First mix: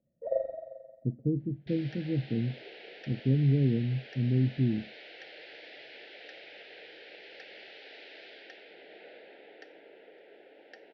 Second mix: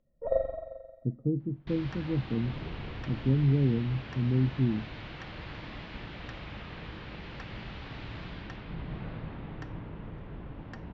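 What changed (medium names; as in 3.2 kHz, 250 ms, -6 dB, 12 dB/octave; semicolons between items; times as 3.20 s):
first sound: remove band-pass filter 780 Hz, Q 0.92; second sound: remove elliptic band-pass 430–5200 Hz, stop band 50 dB; master: remove Butterworth band-stop 1.1 kHz, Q 1.1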